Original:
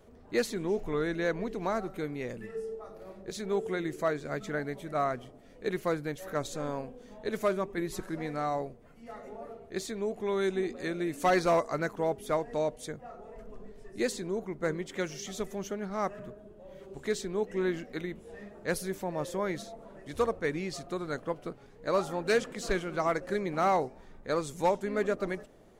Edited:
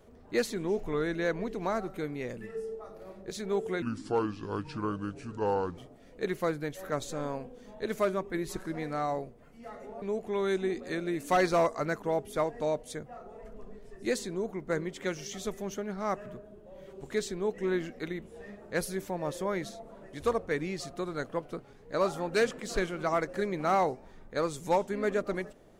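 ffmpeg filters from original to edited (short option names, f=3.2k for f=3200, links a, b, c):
-filter_complex "[0:a]asplit=4[a][b][c][d];[a]atrim=end=3.824[e];[b]atrim=start=3.82:end=5.21,asetpts=PTS-STARTPTS,asetrate=31311,aresample=44100[f];[c]atrim=start=5.206:end=9.452[g];[d]atrim=start=9.948[h];[e][f]acrossfade=d=0.004:c1=hsin:c2=hsin[i];[i][g]acrossfade=d=0.004:c1=hsin:c2=hsin[j];[j][h]acrossfade=d=0.004:c1=hsin:c2=hsin"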